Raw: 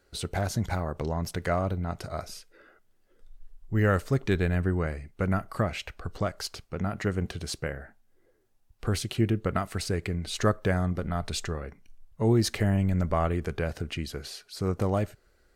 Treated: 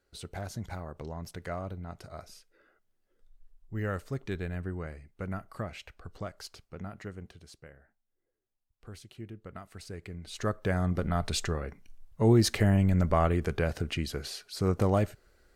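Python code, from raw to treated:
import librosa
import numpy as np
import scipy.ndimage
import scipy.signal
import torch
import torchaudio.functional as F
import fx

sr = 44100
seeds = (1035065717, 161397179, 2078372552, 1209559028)

y = fx.gain(x, sr, db=fx.line((6.77, -9.5), (7.54, -18.5), (9.34, -18.5), (10.25, -10.0), (10.99, 1.0)))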